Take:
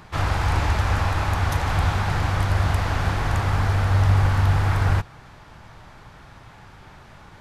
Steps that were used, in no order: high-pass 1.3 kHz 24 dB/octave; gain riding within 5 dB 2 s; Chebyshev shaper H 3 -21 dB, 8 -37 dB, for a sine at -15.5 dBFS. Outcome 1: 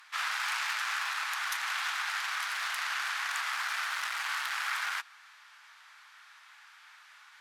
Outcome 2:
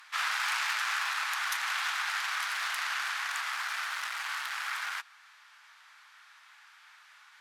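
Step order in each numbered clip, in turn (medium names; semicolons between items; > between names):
Chebyshev shaper > high-pass > gain riding; Chebyshev shaper > gain riding > high-pass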